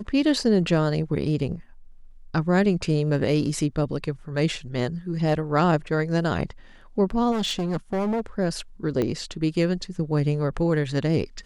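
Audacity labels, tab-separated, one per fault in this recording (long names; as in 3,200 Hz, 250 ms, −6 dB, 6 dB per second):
7.310000	8.210000	clipping −22 dBFS
9.020000	9.020000	click −13 dBFS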